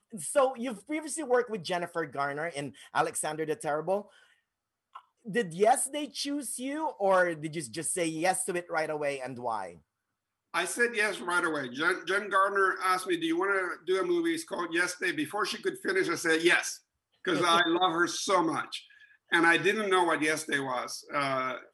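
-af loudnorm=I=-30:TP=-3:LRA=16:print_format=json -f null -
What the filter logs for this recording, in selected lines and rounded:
"input_i" : "-28.8",
"input_tp" : "-10.0",
"input_lra" : "4.2",
"input_thresh" : "-39.2",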